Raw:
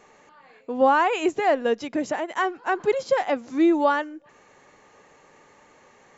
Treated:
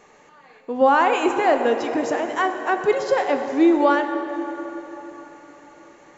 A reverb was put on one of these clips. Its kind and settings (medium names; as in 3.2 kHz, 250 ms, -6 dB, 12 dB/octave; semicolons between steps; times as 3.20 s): plate-style reverb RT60 4.2 s, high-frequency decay 0.6×, DRR 5.5 dB; trim +2 dB